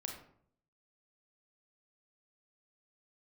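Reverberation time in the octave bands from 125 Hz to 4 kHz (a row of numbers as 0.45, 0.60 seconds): 0.85, 0.75, 0.65, 0.60, 0.45, 0.35 seconds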